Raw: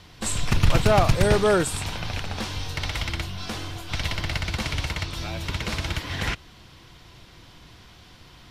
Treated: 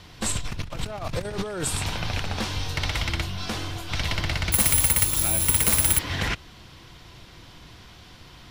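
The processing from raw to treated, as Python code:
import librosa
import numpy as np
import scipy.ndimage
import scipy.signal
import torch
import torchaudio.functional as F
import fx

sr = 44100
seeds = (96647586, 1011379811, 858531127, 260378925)

y = fx.over_compress(x, sr, threshold_db=-26.0, ratio=-1.0)
y = fx.resample_bad(y, sr, factor=4, down='none', up='zero_stuff', at=(4.52, 5.99))
y = y * librosa.db_to_amplitude(-1.0)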